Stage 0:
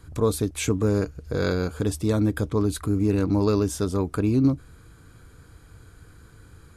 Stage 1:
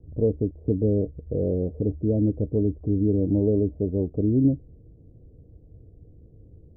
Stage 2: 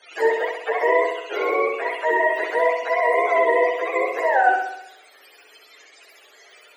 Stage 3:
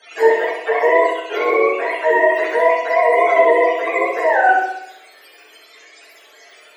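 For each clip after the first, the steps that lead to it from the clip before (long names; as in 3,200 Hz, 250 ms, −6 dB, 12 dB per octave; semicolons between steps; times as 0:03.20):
Butterworth low-pass 630 Hz 48 dB per octave
frequency axis turned over on the octave scale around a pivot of 450 Hz; flutter between parallel walls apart 11.1 metres, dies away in 0.78 s; level +4.5 dB
rectangular room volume 240 cubic metres, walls furnished, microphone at 1.6 metres; level +2 dB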